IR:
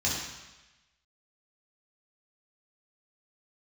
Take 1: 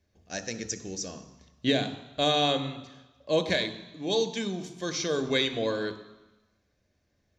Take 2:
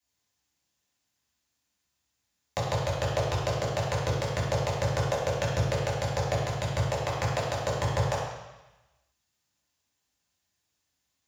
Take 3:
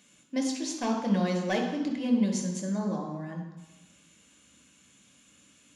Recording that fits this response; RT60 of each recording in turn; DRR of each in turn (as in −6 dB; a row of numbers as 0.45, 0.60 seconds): 2; 1.1, 1.1, 1.1 seconds; 10.0, −6.5, 1.5 decibels